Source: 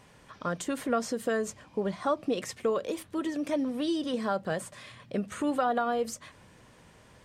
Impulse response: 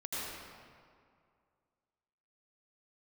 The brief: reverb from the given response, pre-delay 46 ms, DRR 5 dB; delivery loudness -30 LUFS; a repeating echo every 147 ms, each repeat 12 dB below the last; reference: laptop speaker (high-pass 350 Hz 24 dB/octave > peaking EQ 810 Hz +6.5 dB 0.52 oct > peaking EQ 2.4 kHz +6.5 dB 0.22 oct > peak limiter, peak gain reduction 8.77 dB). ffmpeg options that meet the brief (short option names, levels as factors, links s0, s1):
-filter_complex "[0:a]aecho=1:1:147|294|441:0.251|0.0628|0.0157,asplit=2[s0][s1];[1:a]atrim=start_sample=2205,adelay=46[s2];[s1][s2]afir=irnorm=-1:irlink=0,volume=0.376[s3];[s0][s3]amix=inputs=2:normalize=0,highpass=f=350:w=0.5412,highpass=f=350:w=1.3066,equalizer=f=810:t=o:w=0.52:g=6.5,equalizer=f=2400:t=o:w=0.22:g=6.5,volume=1.33,alimiter=limit=0.112:level=0:latency=1"